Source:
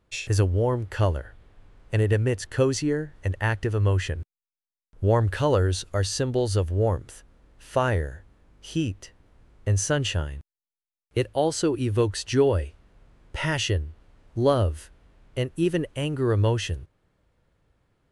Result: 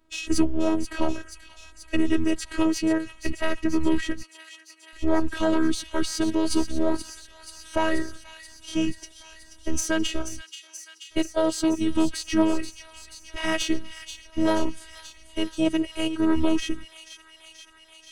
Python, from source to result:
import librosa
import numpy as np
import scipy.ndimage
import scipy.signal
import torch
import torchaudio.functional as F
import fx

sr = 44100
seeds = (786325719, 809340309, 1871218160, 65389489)

p1 = fx.diode_clip(x, sr, knee_db=-24.0)
p2 = fx.dynamic_eq(p1, sr, hz=110.0, q=3.7, threshold_db=-36.0, ratio=4.0, max_db=5)
p3 = fx.level_steps(p2, sr, step_db=14)
p4 = p2 + (p3 * 10.0 ** (2.5 / 20.0))
p5 = fx.pitch_keep_formants(p4, sr, semitones=-4.5)
p6 = fx.robotise(p5, sr, hz=319.0)
y = p6 + fx.echo_wet_highpass(p6, sr, ms=482, feedback_pct=76, hz=2400.0, wet_db=-9, dry=0)